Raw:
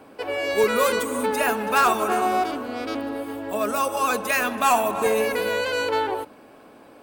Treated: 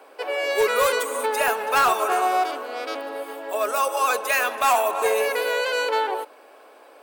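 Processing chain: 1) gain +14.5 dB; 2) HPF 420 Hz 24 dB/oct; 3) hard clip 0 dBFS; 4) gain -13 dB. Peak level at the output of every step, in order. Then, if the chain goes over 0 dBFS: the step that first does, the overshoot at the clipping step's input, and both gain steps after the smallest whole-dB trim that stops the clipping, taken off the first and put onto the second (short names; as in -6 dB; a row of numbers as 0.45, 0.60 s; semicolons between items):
+3.5, +7.5, 0.0, -13.0 dBFS; step 1, 7.5 dB; step 1 +6.5 dB, step 4 -5 dB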